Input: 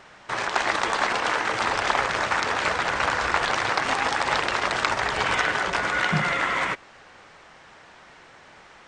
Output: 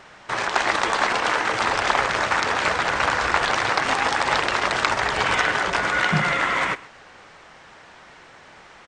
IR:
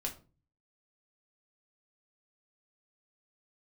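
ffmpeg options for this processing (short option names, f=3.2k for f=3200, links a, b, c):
-af "aecho=1:1:130:0.1,volume=2.5dB"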